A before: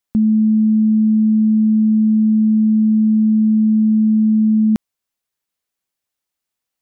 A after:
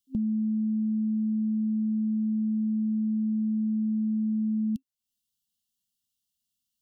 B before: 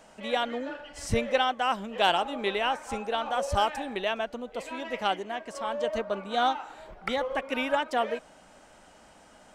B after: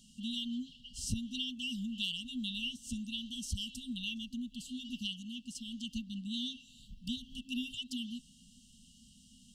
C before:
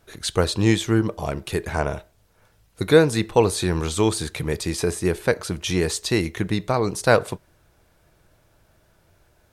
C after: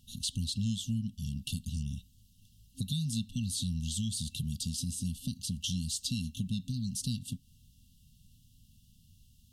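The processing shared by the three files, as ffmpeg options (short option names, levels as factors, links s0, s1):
-af "afftfilt=real='re*(1-between(b*sr/4096,260,2700))':imag='im*(1-between(b*sr/4096,260,2700))':win_size=4096:overlap=0.75,equalizer=f=240:w=2.6:g=2.5,acompressor=threshold=0.0178:ratio=2.5"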